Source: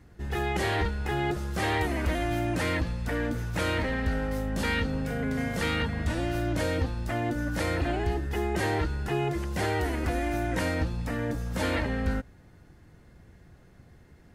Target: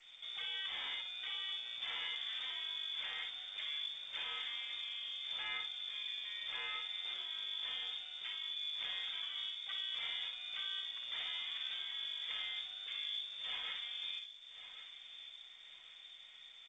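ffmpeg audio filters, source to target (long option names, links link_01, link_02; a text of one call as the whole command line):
ffmpeg -i in.wav -filter_complex "[0:a]highpass=130,adynamicequalizer=threshold=0.00708:dfrequency=170:dqfactor=0.78:tfrequency=170:tqfactor=0.78:attack=5:release=100:ratio=0.375:range=2.5:mode=boostabove:tftype=bell,acompressor=threshold=-49dB:ratio=2.5,asplit=2[link_01][link_02];[link_02]adelay=48,volume=-5.5dB[link_03];[link_01][link_03]amix=inputs=2:normalize=0,asetrate=37926,aresample=44100,lowpass=frequency=3100:width_type=q:width=0.5098,lowpass=frequency=3100:width_type=q:width=0.6013,lowpass=frequency=3100:width_type=q:width=0.9,lowpass=frequency=3100:width_type=q:width=2.563,afreqshift=-3700,aemphasis=mode=reproduction:type=cd,asplit=2[link_04][link_05];[link_05]aecho=0:1:1104|2208|3312|4416:0.237|0.0877|0.0325|0.012[link_06];[link_04][link_06]amix=inputs=2:normalize=0,volume=2dB" -ar 16000 -c:a g722 out.g722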